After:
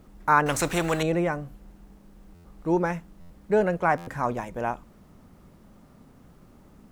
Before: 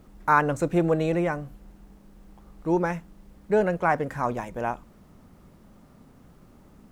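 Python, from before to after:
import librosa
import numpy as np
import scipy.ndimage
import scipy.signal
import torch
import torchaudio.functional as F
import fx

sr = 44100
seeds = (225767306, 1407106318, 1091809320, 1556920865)

y = fx.buffer_glitch(x, sr, at_s=(2.34, 3.2, 3.97), block=512, repeats=8)
y = fx.spectral_comp(y, sr, ratio=2.0, at=(0.46, 1.03))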